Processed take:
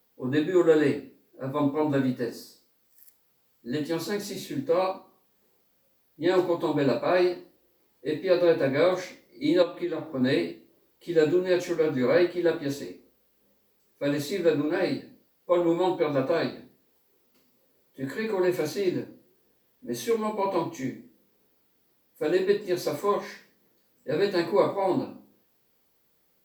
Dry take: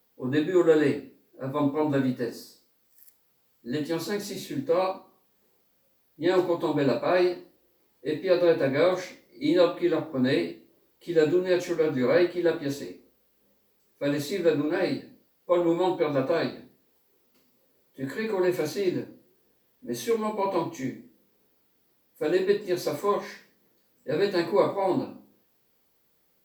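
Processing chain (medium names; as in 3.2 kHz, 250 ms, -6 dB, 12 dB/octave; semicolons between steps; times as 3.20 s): 9.62–10.21 s: compression 12:1, threshold -26 dBFS, peak gain reduction 10 dB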